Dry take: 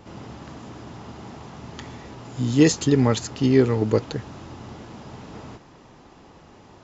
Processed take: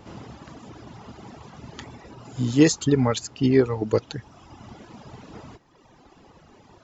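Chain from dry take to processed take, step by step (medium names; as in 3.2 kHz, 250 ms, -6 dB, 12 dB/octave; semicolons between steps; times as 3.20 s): reverb removal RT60 1.5 s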